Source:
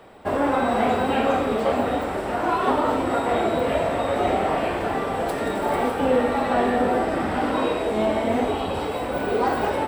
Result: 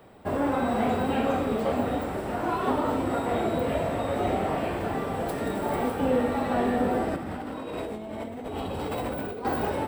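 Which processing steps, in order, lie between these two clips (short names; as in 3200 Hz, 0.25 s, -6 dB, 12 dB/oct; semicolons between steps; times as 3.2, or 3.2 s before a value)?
bell 120 Hz +8 dB 2.7 oct; 7.16–9.45 negative-ratio compressor -27 dBFS, ratio -1; high shelf 12000 Hz +12 dB; gain -7 dB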